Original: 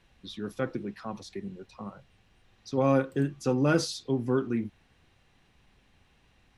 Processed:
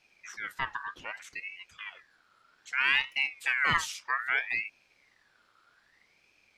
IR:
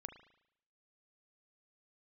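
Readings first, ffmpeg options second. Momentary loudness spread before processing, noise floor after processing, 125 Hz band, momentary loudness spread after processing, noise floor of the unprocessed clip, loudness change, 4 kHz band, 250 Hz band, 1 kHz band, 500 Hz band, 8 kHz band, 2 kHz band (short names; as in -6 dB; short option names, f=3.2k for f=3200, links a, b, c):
18 LU, -68 dBFS, -18.0 dB, 17 LU, -65 dBFS, -0.5 dB, +5.5 dB, -24.5 dB, +1.5 dB, -22.5 dB, -1.0 dB, +13.0 dB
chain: -af "aeval=exprs='val(0)*sin(2*PI*1900*n/s+1900*0.3/0.63*sin(2*PI*0.63*n/s))':c=same"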